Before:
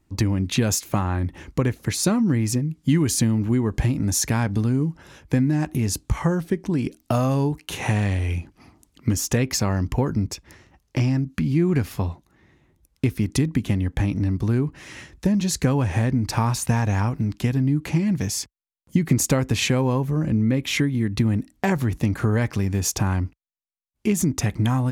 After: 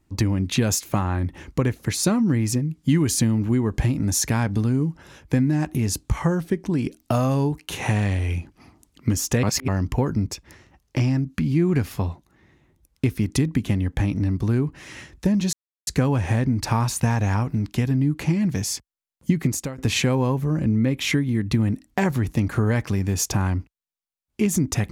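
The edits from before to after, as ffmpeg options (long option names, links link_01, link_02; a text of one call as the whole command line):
ffmpeg -i in.wav -filter_complex "[0:a]asplit=5[link_01][link_02][link_03][link_04][link_05];[link_01]atrim=end=9.432[link_06];[link_02]atrim=start=9.428:end=9.682,asetpts=PTS-STARTPTS,areverse[link_07];[link_03]atrim=start=9.678:end=15.53,asetpts=PTS-STARTPTS,afade=type=out:start_time=5.848:duration=0.004:curve=hsin,apad=pad_dur=0.34[link_08];[link_04]atrim=start=15.53:end=19.44,asetpts=PTS-STARTPTS,afade=type=in:duration=0.004:curve=hsin,afade=type=out:start_time=3.44:duration=0.47:silence=0.112202[link_09];[link_05]atrim=start=19.44,asetpts=PTS-STARTPTS,afade=type=in:duration=0.004:curve=hsin:silence=0.112202[link_10];[link_06][link_07]acrossfade=duration=0.004:curve1=hsin:curve2=hsin[link_11];[link_08][link_09][link_10]concat=n=3:v=0:a=1[link_12];[link_11][link_12]acrossfade=duration=0.004:curve1=hsin:curve2=hsin" out.wav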